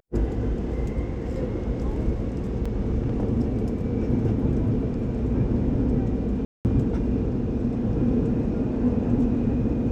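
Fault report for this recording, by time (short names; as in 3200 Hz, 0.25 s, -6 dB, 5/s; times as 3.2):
2.65 gap 5 ms
6.45–6.65 gap 0.199 s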